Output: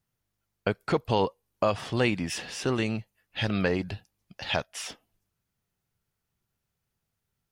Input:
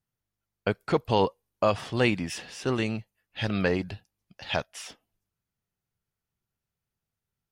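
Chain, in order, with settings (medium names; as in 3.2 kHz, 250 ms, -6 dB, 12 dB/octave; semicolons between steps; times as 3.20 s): compression 1.5:1, threshold -37 dBFS, peak gain reduction 7 dB; trim +5 dB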